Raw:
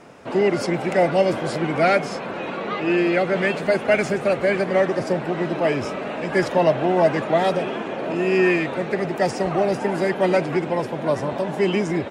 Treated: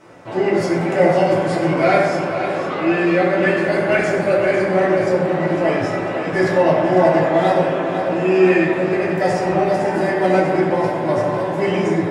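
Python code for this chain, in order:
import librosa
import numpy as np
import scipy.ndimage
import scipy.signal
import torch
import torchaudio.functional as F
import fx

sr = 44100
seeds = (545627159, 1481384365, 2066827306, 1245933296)

y = fx.echo_feedback(x, sr, ms=501, feedback_pct=54, wet_db=-9.5)
y = fx.rev_fdn(y, sr, rt60_s=1.6, lf_ratio=0.8, hf_ratio=0.4, size_ms=54.0, drr_db=-6.5)
y = y * librosa.db_to_amplitude(-4.5)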